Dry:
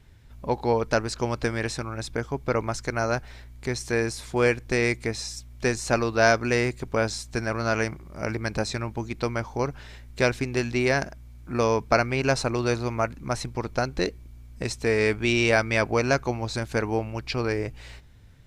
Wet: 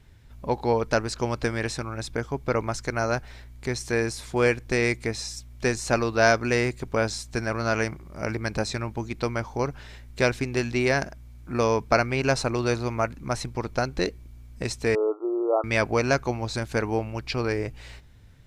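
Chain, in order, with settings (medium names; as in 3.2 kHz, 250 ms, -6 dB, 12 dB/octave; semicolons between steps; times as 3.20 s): 14.95–15.64 s: brick-wall FIR band-pass 300–1400 Hz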